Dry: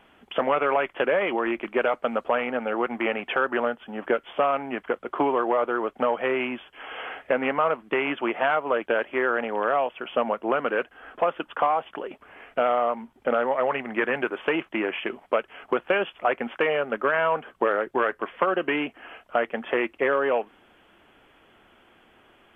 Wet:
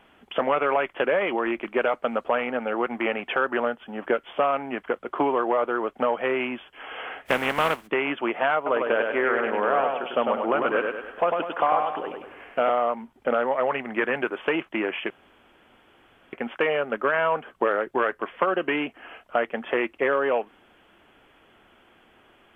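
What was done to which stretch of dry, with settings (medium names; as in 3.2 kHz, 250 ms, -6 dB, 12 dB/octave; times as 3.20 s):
7.25–7.86 s: spectral contrast reduction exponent 0.52
8.56–12.70 s: feedback delay 100 ms, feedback 45%, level -4 dB
15.10–16.33 s: room tone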